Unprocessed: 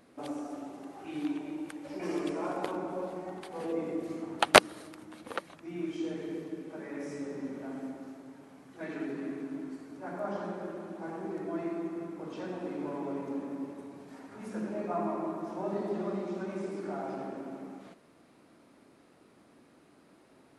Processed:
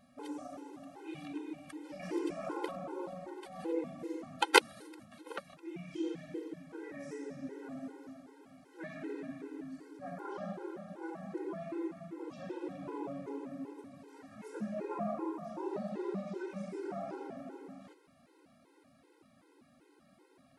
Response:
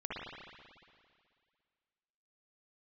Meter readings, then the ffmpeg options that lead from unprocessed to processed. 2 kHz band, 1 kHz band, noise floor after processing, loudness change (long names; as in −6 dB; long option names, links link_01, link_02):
−3.5 dB, −5.0 dB, −66 dBFS, −4.5 dB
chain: -af "afftfilt=real='re*gt(sin(2*PI*2.6*pts/sr)*(1-2*mod(floor(b*sr/1024/270),2)),0)':imag='im*gt(sin(2*PI*2.6*pts/sr)*(1-2*mod(floor(b*sr/1024/270),2)),0)':win_size=1024:overlap=0.75,volume=-1dB"